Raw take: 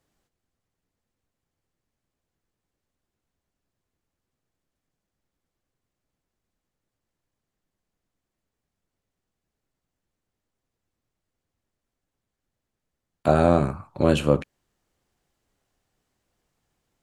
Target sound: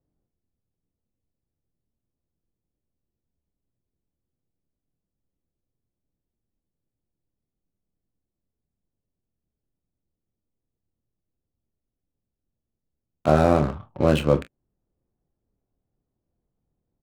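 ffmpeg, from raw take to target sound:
ffmpeg -i in.wav -filter_complex "[0:a]adynamicsmooth=sensitivity=5.5:basefreq=520,asplit=2[link_01][link_02];[link_02]aecho=0:1:26|43:0.335|0.158[link_03];[link_01][link_03]amix=inputs=2:normalize=0" out.wav

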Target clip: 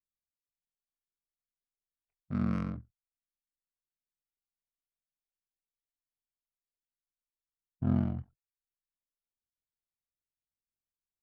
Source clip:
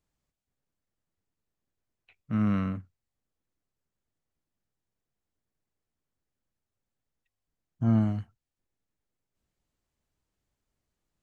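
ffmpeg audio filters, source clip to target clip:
ffmpeg -i in.wav -af "adynamicsmooth=sensitivity=5.5:basefreq=980,aeval=exprs='val(0)*sin(2*PI*22*n/s)':channel_layout=same,agate=range=-18dB:threshold=-51dB:ratio=16:detection=peak,volume=-2dB" out.wav

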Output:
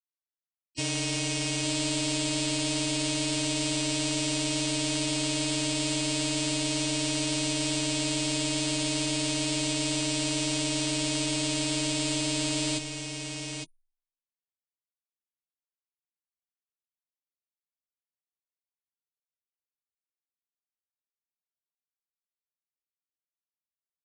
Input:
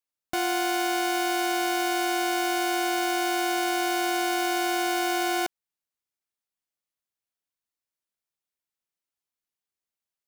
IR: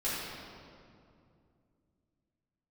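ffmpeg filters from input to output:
-filter_complex "[0:a]aexciter=amount=6.2:drive=4.9:freq=5400,asplit=2[link_01][link_02];[link_02]alimiter=limit=-15dB:level=0:latency=1,volume=1dB[link_03];[link_01][link_03]amix=inputs=2:normalize=0,asoftclip=type=tanh:threshold=-1dB,afftfilt=real='re*gte(hypot(re,im),0.1)':imag='im*gte(hypot(re,im),0.1)':win_size=1024:overlap=0.75,asoftclip=type=hard:threshold=-16.5dB,afreqshift=-25,asplit=2[link_04][link_05];[link_05]aecho=0:1:365:0.473[link_06];[link_04][link_06]amix=inputs=2:normalize=0,asetrate=18846,aresample=44100,volume=-8.5dB"

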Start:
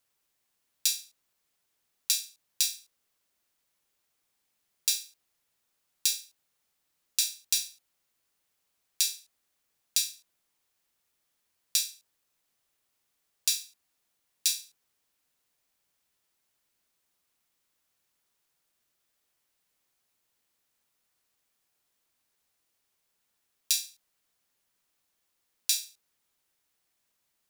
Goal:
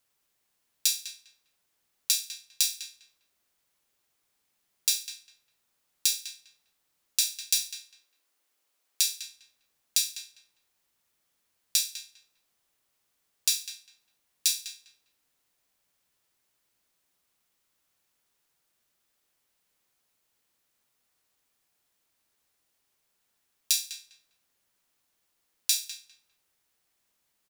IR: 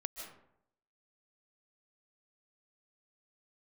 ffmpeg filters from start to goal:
-filter_complex "[0:a]asettb=1/sr,asplit=3[link_01][link_02][link_03];[link_01]atrim=end=7.404[link_04];[link_02]atrim=start=7.4:end=9.13,asetpts=PTS-STARTPTS,afade=type=in:duration=0.004:curve=qsin,afade=type=out:start_time=1.726:duration=0.004:curve=qsin,highpass=frequency=260:width=0.5412,highpass=frequency=260:width=1.3066[link_05];[link_03]atrim=start=9.126[link_06];[link_04][link_05]acrossfade=duration=0.004:curve1=hsin:curve2=qsin[link_07];[link_07][link_06]acrossfade=duration=0.004:curve1=qsin:curve2=hsin,asplit=2[link_08][link_09];[link_09]adelay=201,lowpass=frequency=2200:poles=1,volume=-7dB,asplit=2[link_10][link_11];[link_11]adelay=201,lowpass=frequency=2200:poles=1,volume=0.27,asplit=2[link_12][link_13];[link_13]adelay=201,lowpass=frequency=2200:poles=1,volume=0.27[link_14];[link_10][link_12][link_14]amix=inputs=3:normalize=0[link_15];[link_08][link_15]amix=inputs=2:normalize=0,volume=1.5dB"

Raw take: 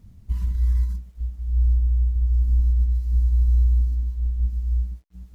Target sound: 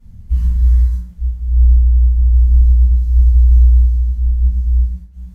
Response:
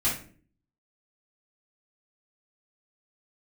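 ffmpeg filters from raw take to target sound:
-filter_complex "[1:a]atrim=start_sample=2205,afade=type=out:start_time=0.21:duration=0.01,atrim=end_sample=9702,asetrate=31752,aresample=44100[link_01];[0:a][link_01]afir=irnorm=-1:irlink=0,volume=-7.5dB"

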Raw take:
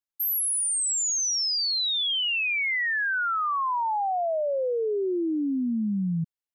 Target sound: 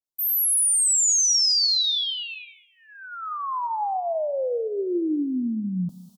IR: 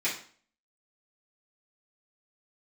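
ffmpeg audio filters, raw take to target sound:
-filter_complex "[0:a]areverse,acompressor=mode=upward:threshold=-41dB:ratio=2.5,areverse,asuperstop=centerf=1900:order=4:qfactor=0.74,aecho=1:1:216|432|648:0.0891|0.0383|0.0165,asplit=2[link_01][link_02];[1:a]atrim=start_sample=2205,lowpass=6500[link_03];[link_02][link_03]afir=irnorm=-1:irlink=0,volume=-17.5dB[link_04];[link_01][link_04]amix=inputs=2:normalize=0,asetrate=46746,aresample=44100,adynamicequalizer=threshold=0.00631:dfrequency=2200:dqfactor=0.7:tfrequency=2200:tqfactor=0.7:attack=5:release=100:ratio=0.375:range=3:mode=boostabove:tftype=highshelf"

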